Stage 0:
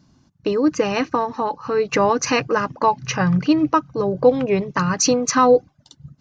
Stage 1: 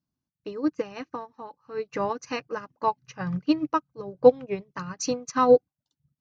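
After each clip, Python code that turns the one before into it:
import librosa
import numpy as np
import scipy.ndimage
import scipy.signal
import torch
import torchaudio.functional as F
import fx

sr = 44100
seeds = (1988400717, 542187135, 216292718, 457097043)

y = fx.upward_expand(x, sr, threshold_db=-29.0, expansion=2.5)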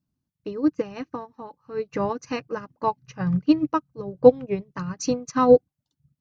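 y = fx.low_shelf(x, sr, hz=350.0, db=9.5)
y = F.gain(torch.from_numpy(y), -1.0).numpy()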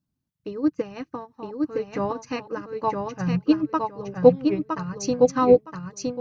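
y = fx.echo_feedback(x, sr, ms=964, feedback_pct=19, wet_db=-3.5)
y = F.gain(torch.from_numpy(y), -1.0).numpy()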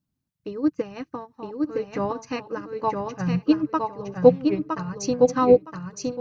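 y = x + 10.0 ** (-21.5 / 20.0) * np.pad(x, (int(1031 * sr / 1000.0), 0))[:len(x)]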